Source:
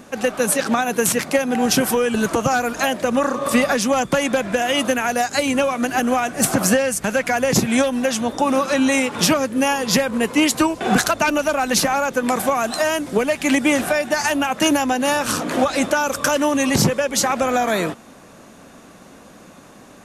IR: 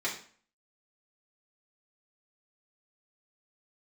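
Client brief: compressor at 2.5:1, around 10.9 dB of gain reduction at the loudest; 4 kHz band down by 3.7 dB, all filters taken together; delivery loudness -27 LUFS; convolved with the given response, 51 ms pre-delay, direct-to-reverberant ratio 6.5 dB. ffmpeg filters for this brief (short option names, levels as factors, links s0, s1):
-filter_complex "[0:a]equalizer=f=4000:t=o:g=-5.5,acompressor=threshold=0.0316:ratio=2.5,asplit=2[s0][s1];[1:a]atrim=start_sample=2205,adelay=51[s2];[s1][s2]afir=irnorm=-1:irlink=0,volume=0.211[s3];[s0][s3]amix=inputs=2:normalize=0,volume=1.12"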